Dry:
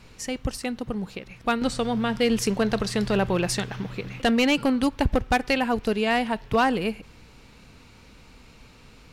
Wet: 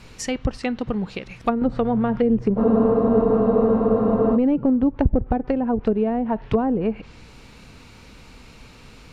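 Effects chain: low-pass that closes with the level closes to 460 Hz, closed at -19 dBFS; spectral freeze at 2.61 s, 1.75 s; trim +5 dB

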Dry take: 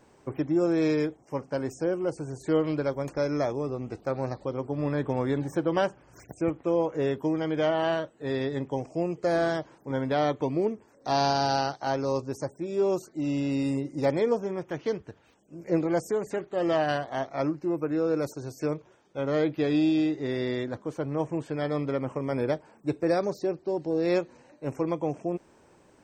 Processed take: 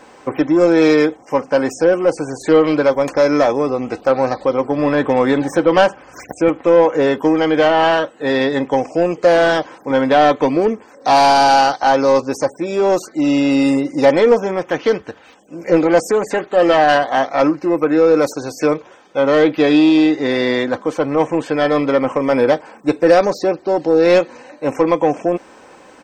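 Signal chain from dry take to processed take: overdrive pedal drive 16 dB, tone 3.9 kHz, clips at -11 dBFS; comb 3.9 ms, depth 36%; trim +9 dB

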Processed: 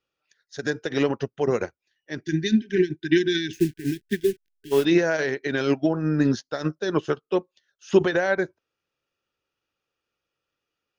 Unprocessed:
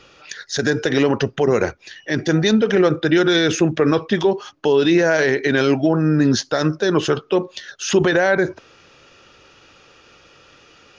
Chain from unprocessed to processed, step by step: 3.53–4.85 s: send-on-delta sampling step -24.5 dBFS; 2.23–4.72 s: spectral selection erased 410–1500 Hz; upward expansion 2.5:1, over -34 dBFS

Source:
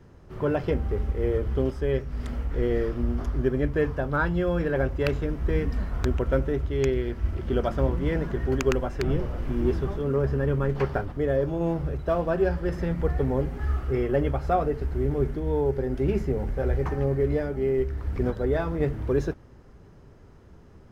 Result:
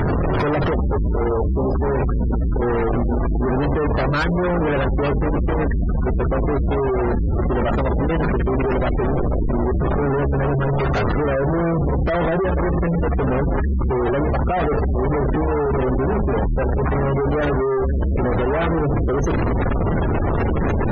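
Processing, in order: one-bit comparator; 1.28–1.70 s: low-pass 1.7 kHz -> 1.1 kHz 24 dB/octave; spectral gate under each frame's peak -20 dB strong; trim +7.5 dB

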